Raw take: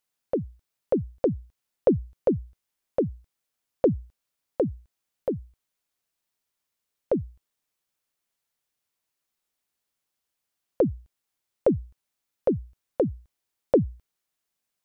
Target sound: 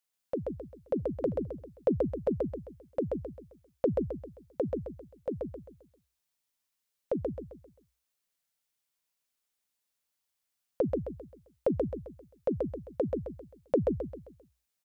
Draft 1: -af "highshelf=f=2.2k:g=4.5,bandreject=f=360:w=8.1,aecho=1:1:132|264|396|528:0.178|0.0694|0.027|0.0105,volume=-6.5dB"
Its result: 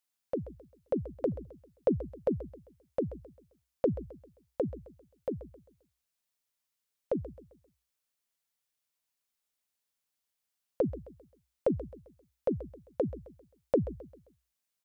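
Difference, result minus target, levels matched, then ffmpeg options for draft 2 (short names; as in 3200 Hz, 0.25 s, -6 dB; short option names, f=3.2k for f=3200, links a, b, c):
echo-to-direct -12 dB
-af "highshelf=f=2.2k:g=4.5,bandreject=f=360:w=8.1,aecho=1:1:132|264|396|528|660:0.708|0.276|0.108|0.042|0.0164,volume=-6.5dB"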